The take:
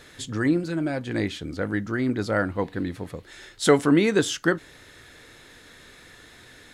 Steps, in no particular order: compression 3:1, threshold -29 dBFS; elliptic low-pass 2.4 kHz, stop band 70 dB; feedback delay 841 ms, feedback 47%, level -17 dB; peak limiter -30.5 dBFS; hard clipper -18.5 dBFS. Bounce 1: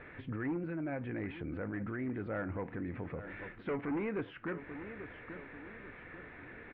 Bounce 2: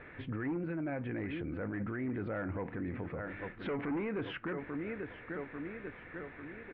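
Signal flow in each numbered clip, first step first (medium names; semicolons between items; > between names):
hard clipper > compression > feedback delay > peak limiter > elliptic low-pass; feedback delay > hard clipper > elliptic low-pass > peak limiter > compression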